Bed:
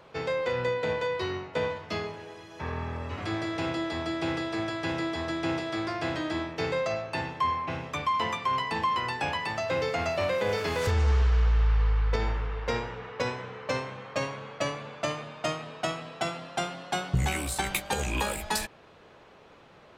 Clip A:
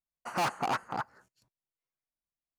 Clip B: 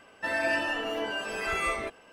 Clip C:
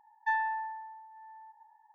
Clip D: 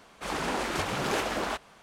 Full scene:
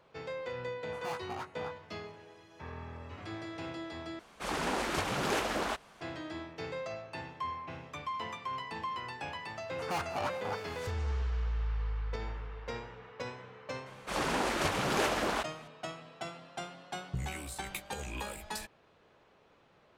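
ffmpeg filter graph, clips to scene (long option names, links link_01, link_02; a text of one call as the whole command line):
ffmpeg -i bed.wav -i cue0.wav -i cue1.wav -i cue2.wav -i cue3.wav -filter_complex "[1:a]asplit=2[link_01][link_02];[4:a]asplit=2[link_03][link_04];[0:a]volume=-10.5dB[link_05];[link_01]flanger=delay=16.5:depth=3.2:speed=1.5[link_06];[link_02]aecho=1:1:195|390|585|780|975|1170:0.188|0.109|0.0634|0.0368|0.0213|0.0124[link_07];[link_05]asplit=2[link_08][link_09];[link_08]atrim=end=4.194[link_10];[link_03]atrim=end=1.82,asetpts=PTS-STARTPTS,volume=-2.5dB[link_11];[link_09]atrim=start=6.006[link_12];[link_06]atrim=end=2.58,asetpts=PTS-STARTPTS,volume=-8.5dB,afade=type=in:duration=0.004:curve=hsin,afade=type=out:start_time=2.576:duration=0.004:curve=hsin,adelay=670[link_13];[link_07]atrim=end=2.58,asetpts=PTS-STARTPTS,volume=-6dB,afade=type=in:duration=0.004:curve=hsin,afade=type=out:start_time=2.576:duration=0.004:curve=hsin,adelay=9530[link_14];[link_04]atrim=end=1.82,asetpts=PTS-STARTPTS,volume=-1dB,afade=type=in:duration=0.004:curve=hsin,afade=type=out:start_time=1.816:duration=0.004:curve=hsin,adelay=13860[link_15];[link_10][link_11]acrossfade=duration=0.004:curve1=hsin:curve2=hsin[link_16];[link_16][link_12]acrossfade=duration=0.004:curve1=hsin:curve2=hsin[link_17];[link_17][link_13][link_14][link_15]amix=inputs=4:normalize=0" out.wav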